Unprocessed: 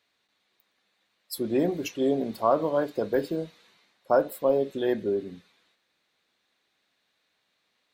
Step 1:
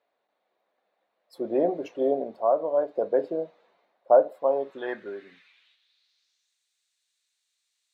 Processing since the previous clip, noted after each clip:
band-pass filter sweep 630 Hz → 7,800 Hz, 0:04.27–0:06.58
speech leveller within 4 dB 0.5 s
level +5 dB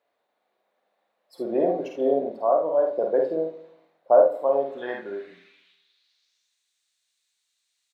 ambience of single reflections 50 ms −4 dB, 73 ms −8.5 dB
on a send at −16 dB: convolution reverb RT60 0.70 s, pre-delay 76 ms

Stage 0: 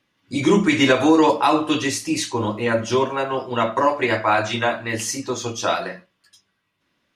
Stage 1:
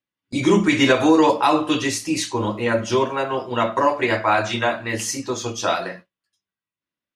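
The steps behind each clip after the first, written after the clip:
noise gate with hold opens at −26 dBFS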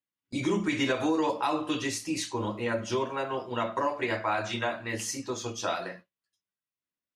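downward compressor 2 to 1, threshold −18 dBFS, peak gain reduction 5 dB
level −8 dB

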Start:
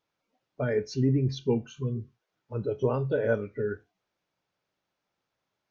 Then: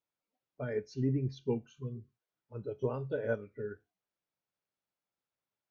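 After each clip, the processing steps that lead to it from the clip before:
expander for the loud parts 1.5 to 1, over −35 dBFS
level −6 dB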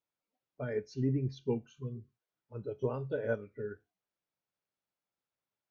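no processing that can be heard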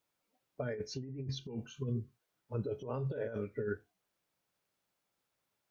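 compressor whose output falls as the input rises −41 dBFS, ratio −1
level +3 dB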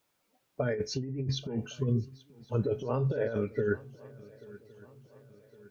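feedback echo with a long and a short gap by turns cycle 1,112 ms, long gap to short 3 to 1, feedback 48%, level −22 dB
level +7.5 dB

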